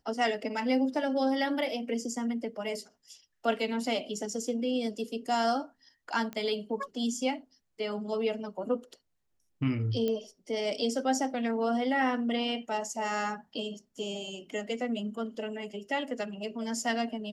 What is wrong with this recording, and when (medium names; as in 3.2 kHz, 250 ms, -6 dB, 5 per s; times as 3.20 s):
6.33 s: pop -24 dBFS
10.08 s: pop -20 dBFS